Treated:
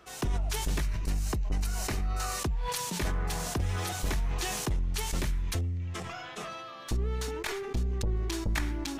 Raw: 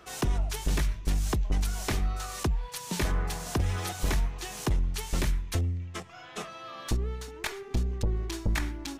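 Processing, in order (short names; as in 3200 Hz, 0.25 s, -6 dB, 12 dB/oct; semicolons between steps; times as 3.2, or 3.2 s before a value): 0.82–2.39 notch 3400 Hz, Q 7.4; sustainer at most 21 dB/s; gain -3.5 dB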